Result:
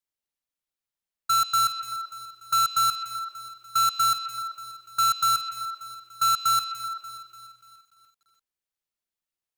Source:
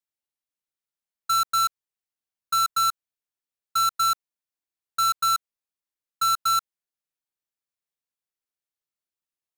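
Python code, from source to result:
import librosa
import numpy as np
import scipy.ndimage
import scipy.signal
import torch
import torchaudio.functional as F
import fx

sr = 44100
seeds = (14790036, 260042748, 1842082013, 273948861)

p1 = fx.low_shelf(x, sr, hz=68.0, db=8.0)
p2 = p1 + fx.echo_stepped(p1, sr, ms=128, hz=3400.0, octaves=-0.7, feedback_pct=70, wet_db=-6.5, dry=0)
y = fx.echo_crushed(p2, sr, ms=292, feedback_pct=55, bits=9, wet_db=-13.5)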